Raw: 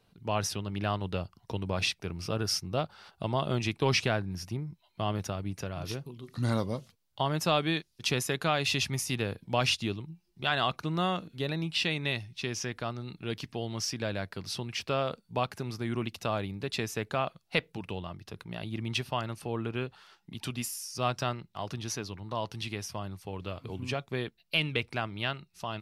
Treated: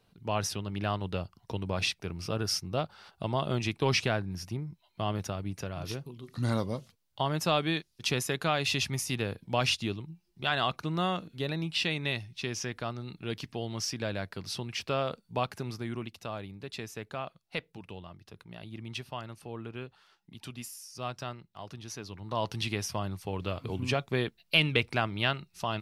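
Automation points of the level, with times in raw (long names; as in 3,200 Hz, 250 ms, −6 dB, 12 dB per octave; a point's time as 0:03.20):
0:15.69 −0.5 dB
0:16.15 −7 dB
0:21.89 −7 dB
0:22.48 +4 dB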